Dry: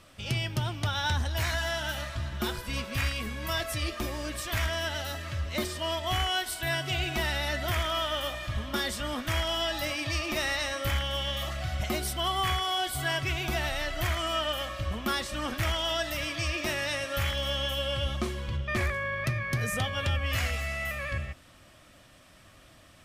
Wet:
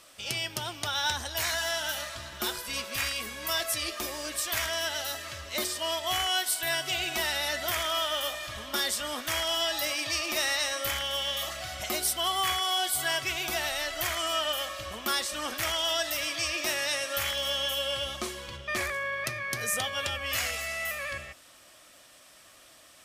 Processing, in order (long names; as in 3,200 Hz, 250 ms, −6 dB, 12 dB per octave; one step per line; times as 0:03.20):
bass and treble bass −15 dB, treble +8 dB